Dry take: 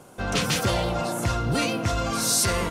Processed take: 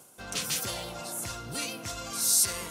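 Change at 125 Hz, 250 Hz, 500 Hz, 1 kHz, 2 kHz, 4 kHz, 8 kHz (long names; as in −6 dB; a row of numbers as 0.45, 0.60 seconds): −16.5, −15.0, −13.5, −12.5, −9.5, −5.0, −0.5 decibels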